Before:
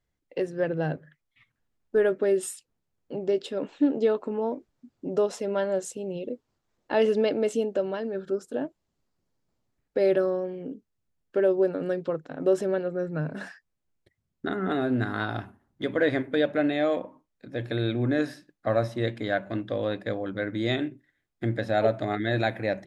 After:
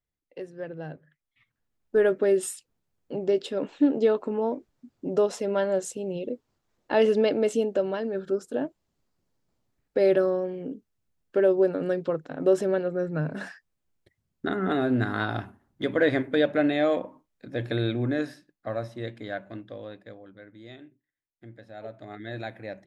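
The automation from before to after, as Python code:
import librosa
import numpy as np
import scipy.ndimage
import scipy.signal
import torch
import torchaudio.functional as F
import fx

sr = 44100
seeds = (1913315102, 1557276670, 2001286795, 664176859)

y = fx.gain(x, sr, db=fx.line((0.95, -9.5), (2.04, 1.5), (17.72, 1.5), (18.73, -7.0), (19.41, -7.0), (20.52, -19.0), (21.73, -19.0), (22.29, -10.0)))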